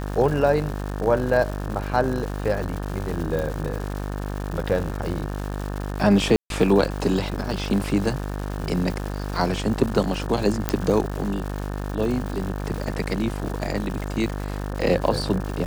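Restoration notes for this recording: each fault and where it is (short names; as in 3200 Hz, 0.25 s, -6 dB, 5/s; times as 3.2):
buzz 50 Hz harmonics 36 -29 dBFS
crackle 330/s -30 dBFS
3.39 pop
6.36–6.5 gap 0.142 s
10.69 pop -5 dBFS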